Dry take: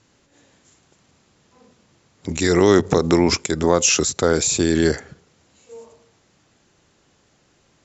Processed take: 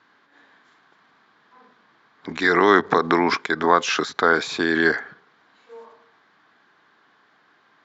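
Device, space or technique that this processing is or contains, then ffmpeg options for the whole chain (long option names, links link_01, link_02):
phone earpiece: -af "highpass=360,equalizer=frequency=360:width_type=q:width=4:gain=-5,equalizer=frequency=540:width_type=q:width=4:gain=-10,equalizer=frequency=1100:width_type=q:width=4:gain=6,equalizer=frequency=1600:width_type=q:width=4:gain=8,equalizer=frequency=2700:width_type=q:width=4:gain=-8,lowpass=frequency=3700:width=0.5412,lowpass=frequency=3700:width=1.3066,volume=3.5dB"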